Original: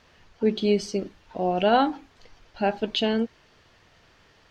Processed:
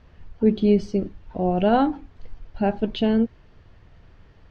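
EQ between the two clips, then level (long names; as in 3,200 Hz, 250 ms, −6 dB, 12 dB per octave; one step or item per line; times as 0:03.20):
RIAA equalisation playback
−1.5 dB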